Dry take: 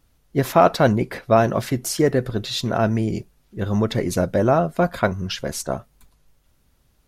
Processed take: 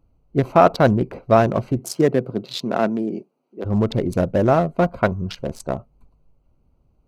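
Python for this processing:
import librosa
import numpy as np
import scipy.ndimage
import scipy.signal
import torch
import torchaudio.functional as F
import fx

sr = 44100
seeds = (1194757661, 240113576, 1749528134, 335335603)

y = fx.wiener(x, sr, points=25)
y = fx.highpass(y, sr, hz=fx.line((1.79, 110.0), (3.64, 280.0)), slope=24, at=(1.79, 3.64), fade=0.02)
y = F.gain(torch.from_numpy(y), 1.5).numpy()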